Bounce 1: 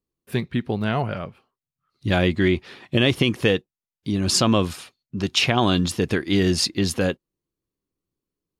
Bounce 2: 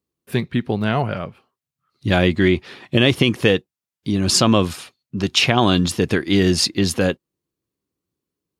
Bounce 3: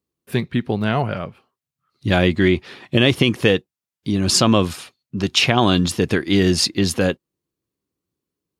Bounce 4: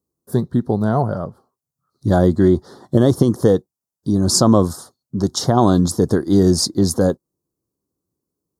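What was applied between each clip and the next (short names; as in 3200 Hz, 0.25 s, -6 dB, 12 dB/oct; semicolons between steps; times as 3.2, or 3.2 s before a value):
HPF 66 Hz; gain +3.5 dB
nothing audible
Butterworth band-stop 2500 Hz, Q 0.58; gain +3 dB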